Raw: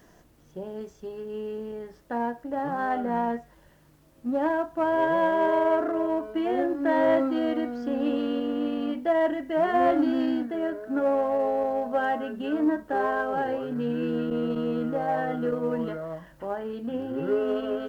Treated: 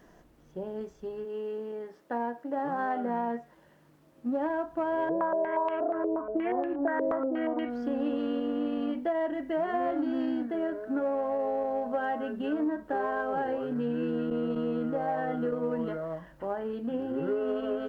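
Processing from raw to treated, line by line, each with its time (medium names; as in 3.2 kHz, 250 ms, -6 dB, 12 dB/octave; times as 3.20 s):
1.24–4.38 s: high-pass 300 Hz -> 93 Hz
5.09–7.70 s: step-sequenced low-pass 8.4 Hz 450–2700 Hz
whole clip: peaking EQ 98 Hz -6.5 dB 0.77 oct; compression, threshold -26 dBFS; treble shelf 3.4 kHz -8.5 dB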